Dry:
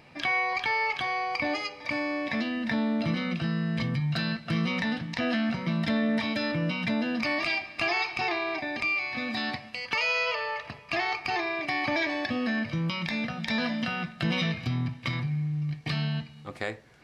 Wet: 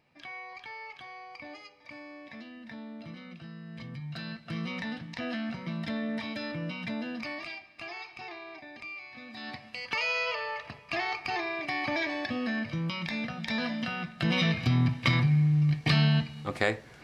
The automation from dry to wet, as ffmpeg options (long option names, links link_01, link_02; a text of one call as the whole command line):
ffmpeg -i in.wav -af "volume=13dB,afade=type=in:start_time=3.63:duration=1.07:silence=0.354813,afade=type=out:start_time=7.08:duration=0.52:silence=0.446684,afade=type=in:start_time=9.33:duration=0.46:silence=0.281838,afade=type=in:start_time=14.06:duration=0.94:silence=0.354813" out.wav